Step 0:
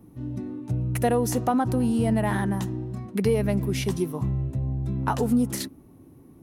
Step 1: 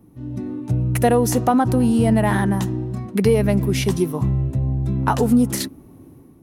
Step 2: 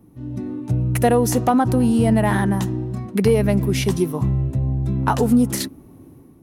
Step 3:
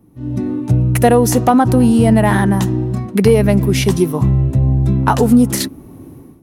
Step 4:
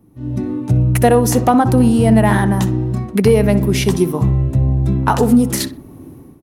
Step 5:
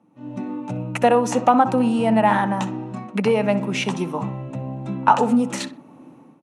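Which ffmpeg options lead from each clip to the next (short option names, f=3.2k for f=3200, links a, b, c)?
-af "dynaudnorm=f=100:g=7:m=6.5dB"
-af "asoftclip=type=hard:threshold=-7.5dB"
-af "dynaudnorm=f=140:g=3:m=8.5dB"
-filter_complex "[0:a]asplit=2[a][b];[b]adelay=63,lowpass=f=1.8k:p=1,volume=-11.5dB,asplit=2[c][d];[d]adelay=63,lowpass=f=1.8k:p=1,volume=0.37,asplit=2[e][f];[f]adelay=63,lowpass=f=1.8k:p=1,volume=0.37,asplit=2[g][h];[h]adelay=63,lowpass=f=1.8k:p=1,volume=0.37[i];[a][c][e][g][i]amix=inputs=5:normalize=0,volume=-1dB"
-af "highpass=f=170:w=0.5412,highpass=f=170:w=1.3066,equalizer=f=380:t=q:w=4:g=-8,equalizer=f=560:t=q:w=4:g=6,equalizer=f=880:t=q:w=4:g=9,equalizer=f=1.3k:t=q:w=4:g=6,equalizer=f=2.6k:t=q:w=4:g=8,equalizer=f=4.9k:t=q:w=4:g=-6,lowpass=f=7.9k:w=0.5412,lowpass=f=7.9k:w=1.3066,volume=-6dB"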